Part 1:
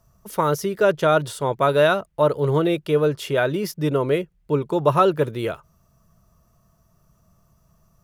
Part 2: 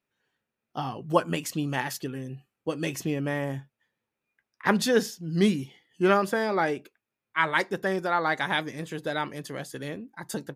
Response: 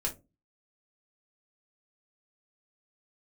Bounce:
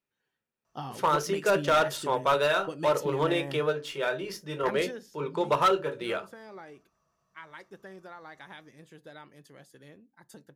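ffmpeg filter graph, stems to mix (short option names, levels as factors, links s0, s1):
-filter_complex "[0:a]highpass=f=1000:p=1,adynamicsmooth=sensitivity=5.5:basefreq=5200,adelay=650,volume=0.708,asplit=2[s0][s1];[s1]volume=0.501[s2];[1:a]acompressor=threshold=0.0562:ratio=6,volume=0.473,afade=t=out:st=4.61:d=0.46:silence=0.281838,asplit=3[s3][s4][s5];[s4]volume=0.1[s6];[s5]apad=whole_len=383072[s7];[s0][s7]sidechaingate=range=0.282:threshold=0.00158:ratio=16:detection=peak[s8];[2:a]atrim=start_sample=2205[s9];[s2][s6]amix=inputs=2:normalize=0[s10];[s10][s9]afir=irnorm=-1:irlink=0[s11];[s8][s3][s11]amix=inputs=3:normalize=0,asoftclip=type=hard:threshold=0.141"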